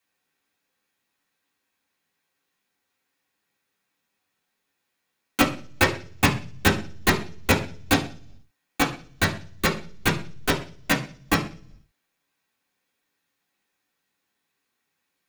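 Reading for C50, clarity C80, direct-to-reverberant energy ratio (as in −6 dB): 11.0 dB, 16.0 dB, −4.5 dB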